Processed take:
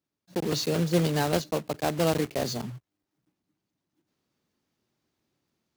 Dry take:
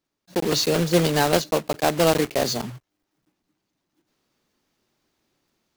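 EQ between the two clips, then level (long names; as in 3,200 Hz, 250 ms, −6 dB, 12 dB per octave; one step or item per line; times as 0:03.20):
high-pass filter 81 Hz
low-shelf EQ 200 Hz +10 dB
−8.0 dB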